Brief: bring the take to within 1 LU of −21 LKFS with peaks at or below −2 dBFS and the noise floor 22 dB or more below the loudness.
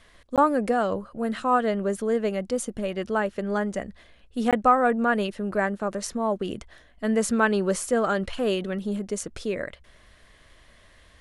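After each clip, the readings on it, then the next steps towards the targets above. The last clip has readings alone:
number of dropouts 2; longest dropout 17 ms; integrated loudness −25.5 LKFS; sample peak −7.5 dBFS; target loudness −21.0 LKFS
→ repair the gap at 0:00.36/0:04.51, 17 ms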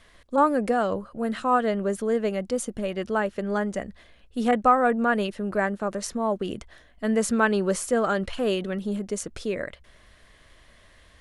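number of dropouts 0; integrated loudness −25.5 LKFS; sample peak −7.5 dBFS; target loudness −21.0 LKFS
→ level +4.5 dB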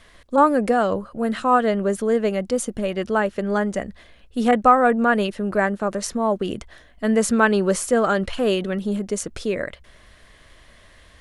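integrated loudness −21.0 LKFS; sample peak −3.0 dBFS; background noise floor −51 dBFS

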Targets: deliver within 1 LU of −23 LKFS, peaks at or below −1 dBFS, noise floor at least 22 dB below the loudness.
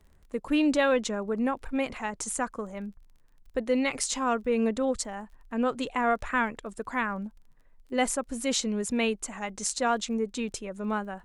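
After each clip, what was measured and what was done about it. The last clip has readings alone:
crackle rate 27 per second; integrated loudness −29.0 LKFS; sample peak −11.0 dBFS; target loudness −23.0 LKFS
→ click removal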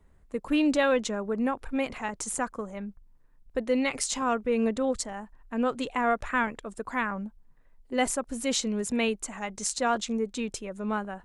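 crackle rate 0 per second; integrated loudness −29.0 LKFS; sample peak −11.0 dBFS; target loudness −23.0 LKFS
→ level +6 dB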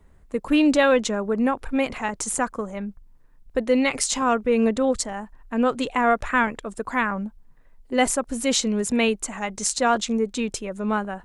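integrated loudness −23.0 LKFS; sample peak −5.0 dBFS; background noise floor −53 dBFS

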